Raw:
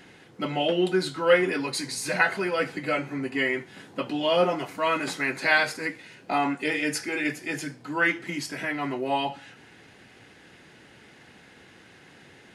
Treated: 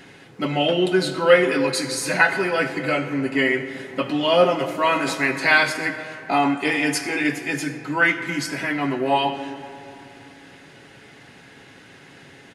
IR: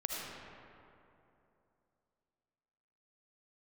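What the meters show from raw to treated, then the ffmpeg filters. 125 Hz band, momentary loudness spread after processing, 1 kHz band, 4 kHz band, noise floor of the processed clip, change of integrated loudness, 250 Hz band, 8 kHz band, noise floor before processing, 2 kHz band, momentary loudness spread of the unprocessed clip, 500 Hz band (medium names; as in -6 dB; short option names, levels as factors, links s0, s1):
+6.5 dB, 10 LU, +5.5 dB, +5.5 dB, -47 dBFS, +5.5 dB, +6.0 dB, +5.5 dB, -53 dBFS, +5.5 dB, 11 LU, +5.5 dB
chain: -filter_complex "[0:a]aecho=1:1:7.3:0.31,asplit=2[s0][s1];[1:a]atrim=start_sample=2205[s2];[s1][s2]afir=irnorm=-1:irlink=0,volume=0.335[s3];[s0][s3]amix=inputs=2:normalize=0,volume=1.33"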